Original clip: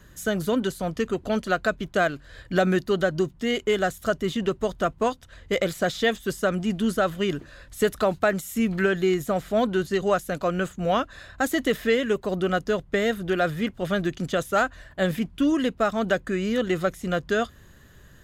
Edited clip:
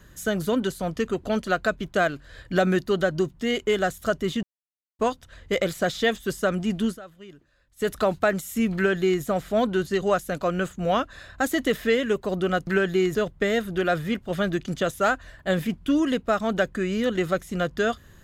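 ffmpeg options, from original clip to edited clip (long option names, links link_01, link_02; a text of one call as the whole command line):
ffmpeg -i in.wav -filter_complex "[0:a]asplit=7[link_01][link_02][link_03][link_04][link_05][link_06][link_07];[link_01]atrim=end=4.43,asetpts=PTS-STARTPTS,afade=type=out:start_time=4.426:duration=0.004:curve=hsin[link_08];[link_02]atrim=start=4.43:end=4.99,asetpts=PTS-STARTPTS,volume=0[link_09];[link_03]atrim=start=4.99:end=6.99,asetpts=PTS-STARTPTS,afade=type=in:duration=0.004:curve=hsin,afade=type=out:start_time=1.86:duration=0.14:silence=0.105925[link_10];[link_04]atrim=start=6.99:end=7.76,asetpts=PTS-STARTPTS,volume=-19.5dB[link_11];[link_05]atrim=start=7.76:end=12.672,asetpts=PTS-STARTPTS,afade=type=in:duration=0.14:silence=0.105925[link_12];[link_06]atrim=start=8.748:end=9.232[link_13];[link_07]atrim=start=12.668[link_14];[link_08][link_09][link_10][link_11][link_12]concat=n=5:v=0:a=1[link_15];[link_15][link_13]acrossfade=duration=0.004:curve1=hsin:curve2=hsin[link_16];[link_16][link_14]acrossfade=duration=0.004:curve1=hsin:curve2=hsin" out.wav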